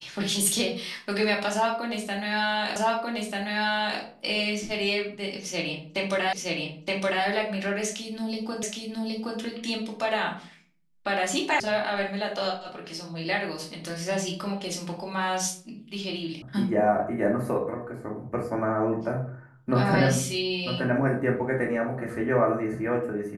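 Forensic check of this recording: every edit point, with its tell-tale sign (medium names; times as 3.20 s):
2.76 s: repeat of the last 1.24 s
6.33 s: repeat of the last 0.92 s
8.63 s: repeat of the last 0.77 s
11.60 s: sound stops dead
16.42 s: sound stops dead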